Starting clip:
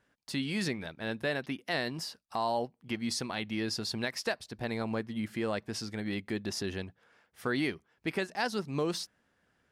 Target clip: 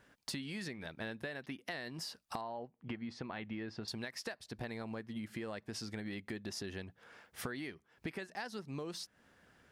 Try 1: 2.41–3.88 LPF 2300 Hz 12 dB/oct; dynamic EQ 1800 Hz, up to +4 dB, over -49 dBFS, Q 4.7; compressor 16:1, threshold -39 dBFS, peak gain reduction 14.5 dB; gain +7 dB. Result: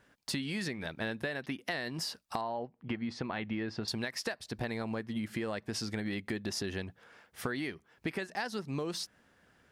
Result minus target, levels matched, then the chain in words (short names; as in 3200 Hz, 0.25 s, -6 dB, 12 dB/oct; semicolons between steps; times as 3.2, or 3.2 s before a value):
compressor: peak gain reduction -6.5 dB
2.41–3.88 LPF 2300 Hz 12 dB/oct; dynamic EQ 1800 Hz, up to +4 dB, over -49 dBFS, Q 4.7; compressor 16:1, threshold -46 dBFS, peak gain reduction 21 dB; gain +7 dB